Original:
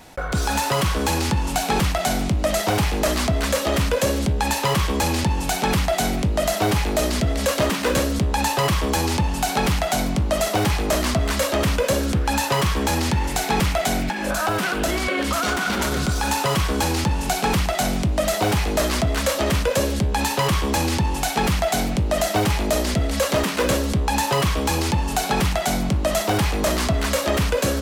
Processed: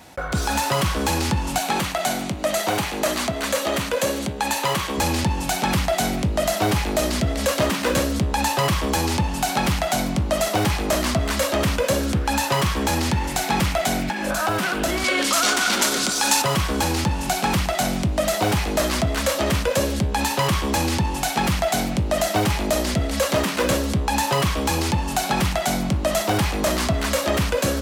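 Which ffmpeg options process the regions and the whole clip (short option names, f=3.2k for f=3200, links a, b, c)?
-filter_complex "[0:a]asettb=1/sr,asplit=3[a][b][c];[a]atrim=end=1.584[d];[b]atrim=start=1.58:end=4.98,asetpts=PTS-STARTPTS,afade=t=in:d=0.004:c=qsin,afade=t=out:st=3.396:d=0.004:c=qsin,highpass=f=250:p=1,bandreject=f=5.2k:w=15[e];[c]atrim=start=4.976[f];[d][e]acrossfade=d=0.004:c1=hsin:c2=qsin[g];[g][f]acrossfade=d=0.004:c1=qsin:c2=hsin,asettb=1/sr,asplit=3[h][i][j];[h]atrim=end=15.044[k];[i]atrim=start=15.04:end=16.42,asetpts=PTS-STARTPTS,afade=t=in:d=0.004:c=qsin,afade=t=out:st=1.376:d=0.004:c=qsin,highpass=f=220:w=0.5412,highpass=f=220:w=1.3066,equalizer=f=6.8k:w=0.41:g=9.5,aeval=exprs='val(0)+0.00501*(sin(2*PI*50*n/s)+sin(2*PI*2*50*n/s)/2+sin(2*PI*3*50*n/s)/3+sin(2*PI*4*50*n/s)/4+sin(2*PI*5*50*n/s)/5)':c=same[l];[j]atrim=start=16.416[m];[k][l]acrossfade=d=0.004:c1=hsin:c2=qsin[n];[n][m]acrossfade=d=0.004:c1=qsin:c2=hsin,highpass=58,bandreject=f=440:w=12"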